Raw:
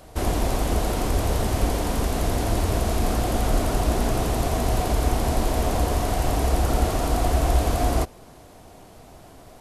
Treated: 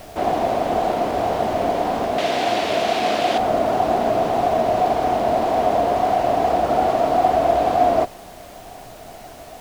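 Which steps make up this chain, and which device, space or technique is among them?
horn gramophone (band-pass 190–3500 Hz; peaking EQ 690 Hz +11 dB 0.54 oct; wow and flutter; pink noise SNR 24 dB); 2.18–3.38 s: frequency weighting D; trim +2 dB

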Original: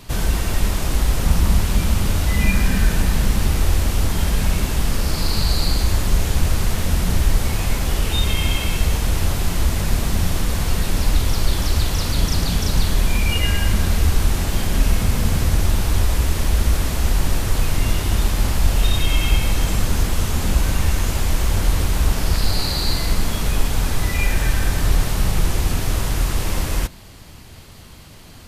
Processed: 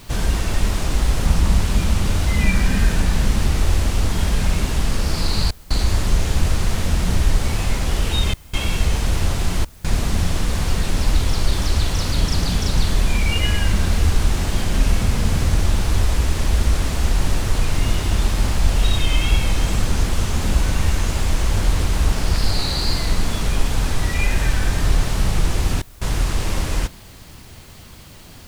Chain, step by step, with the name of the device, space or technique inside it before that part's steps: worn cassette (low-pass 9.5 kHz 12 dB/octave; wow and flutter; level dips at 5.51/8.34/9.65/25.82 s, 192 ms -25 dB; white noise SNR 34 dB)

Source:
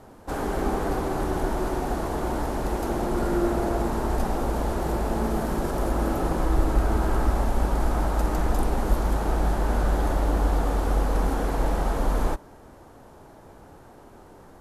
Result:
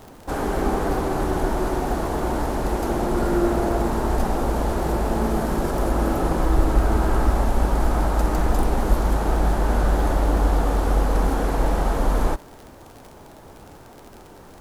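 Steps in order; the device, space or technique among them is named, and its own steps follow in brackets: record under a worn stylus (tracing distortion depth 0.026 ms; crackle 52 per s -36 dBFS; pink noise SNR 35 dB); trim +3.5 dB

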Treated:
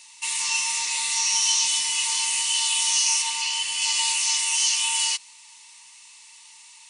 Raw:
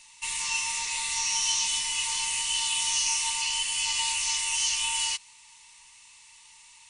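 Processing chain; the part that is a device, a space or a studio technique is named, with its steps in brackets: 3.22–3.82 s: treble shelf 7.9 kHz -9 dB; high-pass 200 Hz 12 dB/octave; presence and air boost (peaking EQ 4.7 kHz +3 dB 0.77 oct; treble shelf 9.7 kHz +5.5 dB); trim +2.5 dB

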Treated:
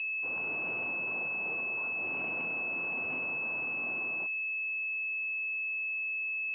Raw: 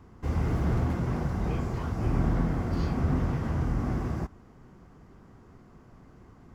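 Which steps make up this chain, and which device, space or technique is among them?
toy sound module (decimation joined by straight lines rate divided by 8×; class-D stage that switches slowly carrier 2.6 kHz; cabinet simulation 700–3700 Hz, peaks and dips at 780 Hz -4 dB, 1.2 kHz -4 dB, 1.9 kHz -5 dB, 2.8 kHz +6 dB)

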